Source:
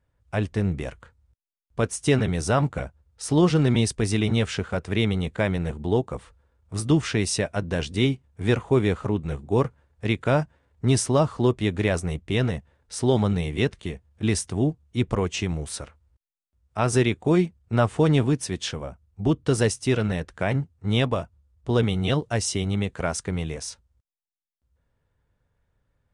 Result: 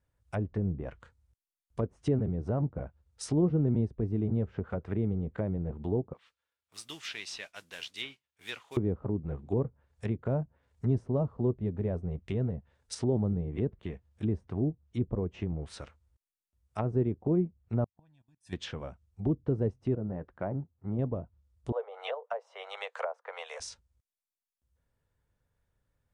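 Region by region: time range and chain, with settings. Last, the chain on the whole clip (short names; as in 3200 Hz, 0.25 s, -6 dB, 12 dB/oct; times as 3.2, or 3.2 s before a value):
6.13–8.77 band-pass 3200 Hz, Q 1.2 + modulation noise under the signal 13 dB
9.57–12.95 high shelf 4300 Hz +8.5 dB + notch 310 Hz, Q 6
17.84–18.53 comb 1.2 ms, depth 97% + level quantiser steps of 19 dB + flipped gate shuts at -26 dBFS, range -38 dB
19.95–20.99 LPF 1100 Hz + low shelf 130 Hz -8.5 dB + notch 450 Hz, Q 10
21.72–23.6 steep high-pass 480 Hz 72 dB/oct + bell 1000 Hz +8.5 dB 1.7 oct
whole clip: treble ducked by the level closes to 500 Hz, closed at -21.5 dBFS; high shelf 6100 Hz +8 dB; gain -6.5 dB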